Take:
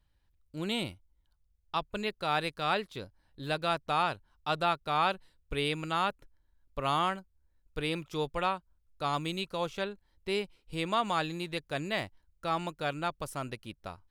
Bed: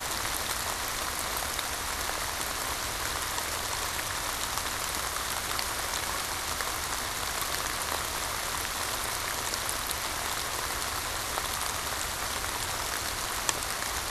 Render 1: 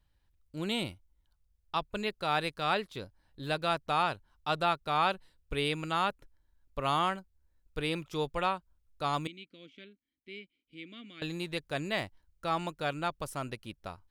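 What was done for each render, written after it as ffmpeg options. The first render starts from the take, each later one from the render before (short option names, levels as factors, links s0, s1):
-filter_complex "[0:a]asettb=1/sr,asplit=3[s0][s1][s2];[s0]atrim=end=9.274[s3];[s1]atrim=start=9.27:end=11.22,asetpts=PTS-STARTPTS,afade=t=in:d=0.004:c=qsin,afade=t=out:st=1.946:d=0.004:c=qsin,asplit=3[s4][s5][s6];[s4]bandpass=f=270:t=q:w=8,volume=1[s7];[s5]bandpass=f=2290:t=q:w=8,volume=0.501[s8];[s6]bandpass=f=3010:t=q:w=8,volume=0.355[s9];[s7][s8][s9]amix=inputs=3:normalize=0[s10];[s2]atrim=start=11.216[s11];[s3][s10]acrossfade=d=0.004:c1=hsin:c2=qsin[s12];[s12][s11]acrossfade=d=0.004:c1=qsin:c2=hsin"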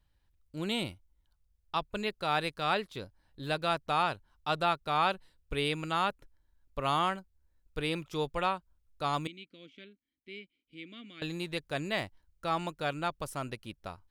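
-af anull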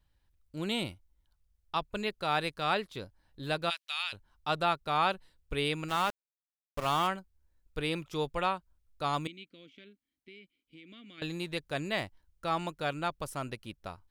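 -filter_complex "[0:a]asplit=3[s0][s1][s2];[s0]afade=t=out:st=3.69:d=0.02[s3];[s1]highpass=f=2800:t=q:w=1.7,afade=t=in:st=3.69:d=0.02,afade=t=out:st=4.12:d=0.02[s4];[s2]afade=t=in:st=4.12:d=0.02[s5];[s3][s4][s5]amix=inputs=3:normalize=0,asplit=3[s6][s7][s8];[s6]afade=t=out:st=5.88:d=0.02[s9];[s7]aeval=exprs='val(0)*gte(abs(val(0)),0.0158)':c=same,afade=t=in:st=5.88:d=0.02,afade=t=out:st=7.06:d=0.02[s10];[s8]afade=t=in:st=7.06:d=0.02[s11];[s9][s10][s11]amix=inputs=3:normalize=0,asettb=1/sr,asplit=3[s12][s13][s14];[s12]atrim=end=9.524[s15];[s13]atrim=start=9.52:end=11.18,asetpts=PTS-STARTPTS,afade=t=in:d=0.004:c=qsin,afade=t=out:st=1.656:d=0.004:c=qsin,acompressor=threshold=0.00447:ratio=6:attack=3.2:release=140:knee=1:detection=peak[s16];[s14]atrim=start=11.176[s17];[s15][s16]acrossfade=d=0.004:c1=hsin:c2=qsin[s18];[s18][s17]acrossfade=d=0.004:c1=qsin:c2=hsin"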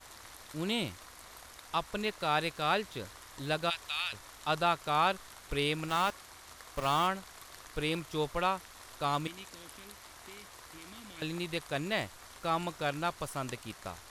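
-filter_complex "[1:a]volume=0.106[s0];[0:a][s0]amix=inputs=2:normalize=0"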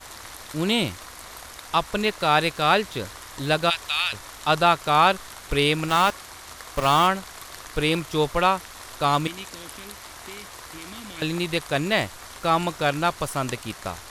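-af "volume=3.35"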